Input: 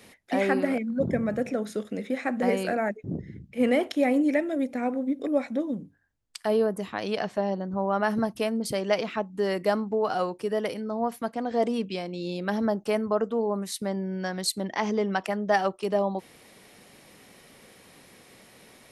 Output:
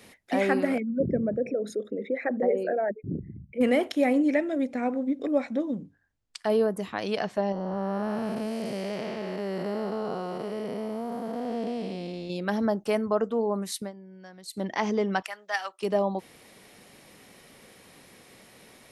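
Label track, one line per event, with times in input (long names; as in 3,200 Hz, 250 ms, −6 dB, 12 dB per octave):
0.800000	3.610000	spectral envelope exaggerated exponent 2
4.130000	6.500000	low-pass filter 7,700 Hz
7.520000	12.300000	spectrum smeared in time width 497 ms
13.790000	14.610000	duck −16 dB, fades 0.13 s
15.220000	15.810000	high-pass filter 1,300 Hz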